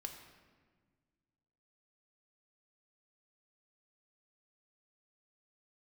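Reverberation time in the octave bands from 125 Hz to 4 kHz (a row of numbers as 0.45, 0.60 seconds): 2.4, 2.2, 1.7, 1.4, 1.3, 1.0 seconds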